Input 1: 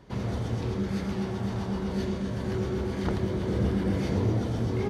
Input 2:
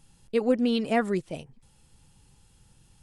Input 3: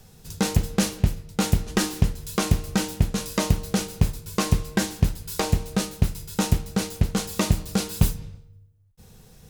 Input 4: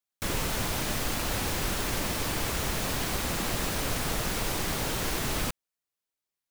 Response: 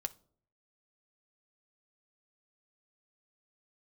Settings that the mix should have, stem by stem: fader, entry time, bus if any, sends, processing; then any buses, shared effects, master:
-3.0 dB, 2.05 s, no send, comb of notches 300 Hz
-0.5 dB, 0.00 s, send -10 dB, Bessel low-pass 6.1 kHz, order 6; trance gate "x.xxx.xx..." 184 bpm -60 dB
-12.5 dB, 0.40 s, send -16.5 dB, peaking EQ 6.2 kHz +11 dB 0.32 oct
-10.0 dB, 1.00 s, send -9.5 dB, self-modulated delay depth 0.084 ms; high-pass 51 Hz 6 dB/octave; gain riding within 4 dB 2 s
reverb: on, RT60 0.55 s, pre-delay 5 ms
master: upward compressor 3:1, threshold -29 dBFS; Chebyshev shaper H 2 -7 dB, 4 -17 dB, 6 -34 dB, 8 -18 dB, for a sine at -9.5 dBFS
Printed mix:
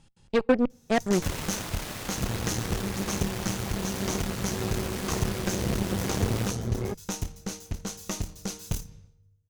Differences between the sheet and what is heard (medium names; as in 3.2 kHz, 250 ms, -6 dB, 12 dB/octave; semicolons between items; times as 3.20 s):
stem 3: entry 0.40 s -> 0.70 s; stem 4: send -9.5 dB -> -2 dB; master: missing upward compressor 3:1, threshold -29 dBFS